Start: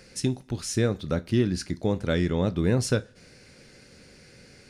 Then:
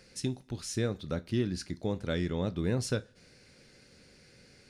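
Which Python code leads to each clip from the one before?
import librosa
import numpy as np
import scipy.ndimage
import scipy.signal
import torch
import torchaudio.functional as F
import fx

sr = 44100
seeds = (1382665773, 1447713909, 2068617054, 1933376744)

y = fx.peak_eq(x, sr, hz=3900.0, db=2.5, octaves=0.77)
y = y * librosa.db_to_amplitude(-7.0)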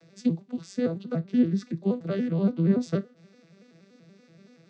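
y = fx.vocoder_arp(x, sr, chord='minor triad', root=52, every_ms=95)
y = y * librosa.db_to_amplitude(7.5)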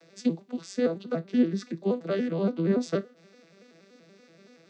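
y = scipy.signal.sosfilt(scipy.signal.butter(2, 290.0, 'highpass', fs=sr, output='sos'), x)
y = y * librosa.db_to_amplitude(3.5)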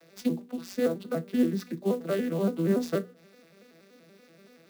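y = fx.hum_notches(x, sr, base_hz=60, count=8)
y = fx.clock_jitter(y, sr, seeds[0], jitter_ms=0.02)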